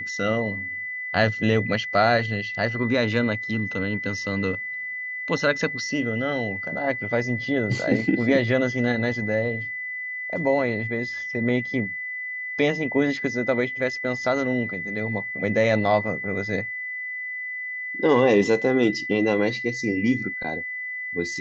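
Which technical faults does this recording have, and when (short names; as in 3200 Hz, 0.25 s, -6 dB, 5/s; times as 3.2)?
tone 2000 Hz -29 dBFS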